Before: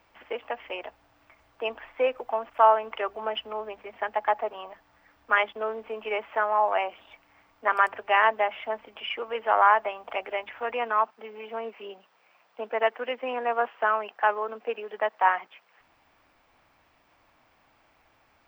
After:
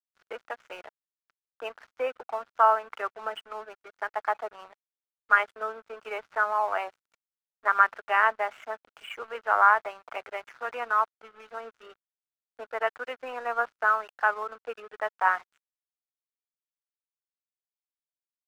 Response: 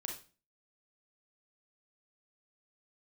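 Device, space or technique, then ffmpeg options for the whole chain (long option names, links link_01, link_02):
pocket radio on a weak battery: -af "highpass=250,lowpass=3100,aeval=exprs='sgn(val(0))*max(abs(val(0))-0.00562,0)':channel_layout=same,equalizer=frequency=1400:width_type=o:width=0.53:gain=11,volume=-5dB"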